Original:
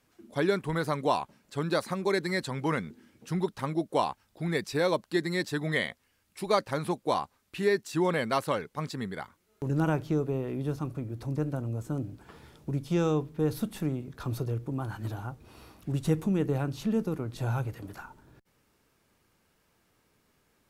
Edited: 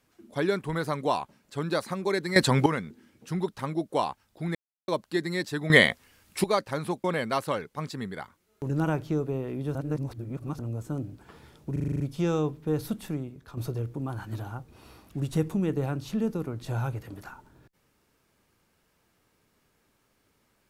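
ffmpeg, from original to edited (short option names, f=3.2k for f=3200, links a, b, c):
-filter_complex "[0:a]asplit=18[a][b][c][d][e][f][g][h][i][j][k][l][m][n][o][p][q][r];[a]atrim=end=2.362[s];[b]atrim=start=2.358:end=2.662,asetpts=PTS-STARTPTS,volume=12dB[t];[c]atrim=start=2.658:end=4.55,asetpts=PTS-STARTPTS,afade=t=out:st=1.888:d=0.004:c=hsin[u];[d]atrim=start=4.55:end=4.88,asetpts=PTS-STARTPTS,volume=0[v];[e]atrim=start=4.88:end=5.702,asetpts=PTS-STARTPTS,afade=t=in:d=0.004:c=hsin[w];[f]atrim=start=5.698:end=6.442,asetpts=PTS-STARTPTS,volume=11.5dB[x];[g]atrim=start=6.438:end=7.042[y];[h]atrim=start=8.038:end=10.752[z];[i]atrim=start=10.748:end=11.592,asetpts=PTS-STARTPTS,areverse[aa];[j]atrim=start=11.588:end=12.762[ab];[k]atrim=start=12.718:end=12.762[ac];[l]atrim=start=12.718:end=12.762[ad];[m]atrim=start=12.718:end=12.762[ae];[n]atrim=start=12.718:end=12.762[af];[o]atrim=start=12.718:end=12.762[ag];[p]atrim=start=12.718:end=12.762[ah];[q]atrim=start=12.718:end=14.29,asetpts=PTS-STARTPTS,afade=t=out:st=0.972:d=0.6:silence=0.354813[ai];[r]atrim=start=14.29,asetpts=PTS-STARTPTS,afade=t=in:d=0.004:c=hsin:silence=0.354813[aj];[s][t]acrossfade=d=0.004:c1=hsin:c2=hsin[ak];[u][v][w]concat=n=3:v=0:a=1[al];[ak][al]acrossfade=d=0.004:c1=hsin:c2=hsin[am];[am][x]acrossfade=d=0.004:c1=hsin:c2=hsin[an];[an][y]acrossfade=d=0.004:c1=hsin:c2=hsin[ao];[ao][z]acrossfade=d=0.004:c1=hsin:c2=hsin[ap];[ap][aa]acrossfade=d=0.004:c1=hsin:c2=hsin[aq];[aq][ab]acrossfade=d=0.004:c1=hsin:c2=hsin[ar];[ar][ac]acrossfade=d=0.004:c1=hsin:c2=hsin[as];[as][ad]acrossfade=d=0.004:c1=hsin:c2=hsin[at];[at][ae]acrossfade=d=0.004:c1=hsin:c2=hsin[au];[au][af]acrossfade=d=0.004:c1=hsin:c2=hsin[av];[av][ag]acrossfade=d=0.004:c1=hsin:c2=hsin[aw];[aw][ah]acrossfade=d=0.004:c1=hsin:c2=hsin[ax];[ai][aj]concat=n=2:v=0:a=1[ay];[ax][ay]acrossfade=d=0.004:c1=hsin:c2=hsin"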